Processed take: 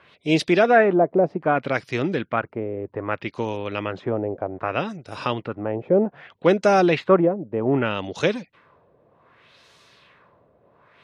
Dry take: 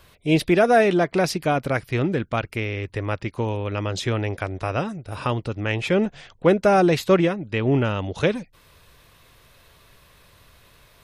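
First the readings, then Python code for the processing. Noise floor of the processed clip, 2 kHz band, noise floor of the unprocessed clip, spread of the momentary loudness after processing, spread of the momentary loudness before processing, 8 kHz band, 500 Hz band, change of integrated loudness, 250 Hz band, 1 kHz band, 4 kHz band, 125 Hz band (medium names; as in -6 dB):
-60 dBFS, +0.5 dB, -55 dBFS, 11 LU, 11 LU, no reading, +1.0 dB, 0.0 dB, -0.5 dB, +1.0 dB, -1.5 dB, -5.5 dB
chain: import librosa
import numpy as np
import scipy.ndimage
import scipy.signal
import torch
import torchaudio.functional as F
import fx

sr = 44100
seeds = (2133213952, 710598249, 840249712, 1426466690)

y = scipy.signal.sosfilt(scipy.signal.butter(2, 170.0, 'highpass', fs=sr, output='sos'), x)
y = fx.filter_lfo_lowpass(y, sr, shape='sine', hz=0.64, low_hz=570.0, high_hz=6500.0, q=1.6)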